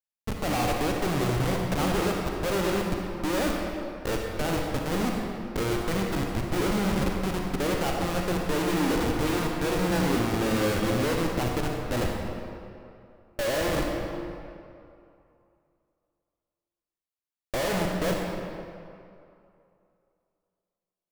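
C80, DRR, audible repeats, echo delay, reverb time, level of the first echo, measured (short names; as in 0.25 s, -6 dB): 2.0 dB, 0.0 dB, none, none, 2.6 s, none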